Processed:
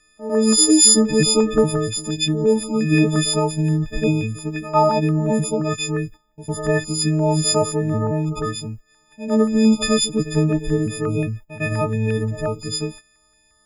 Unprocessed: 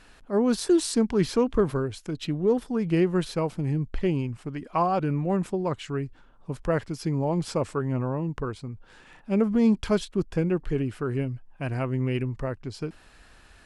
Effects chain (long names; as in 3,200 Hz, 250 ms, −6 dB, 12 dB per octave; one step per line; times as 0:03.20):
every partial snapped to a pitch grid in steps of 6 semitones
noise gate −41 dBFS, range −17 dB
echo ahead of the sound 103 ms −12.5 dB
notch on a step sequencer 5.7 Hz 820–2,400 Hz
level +6.5 dB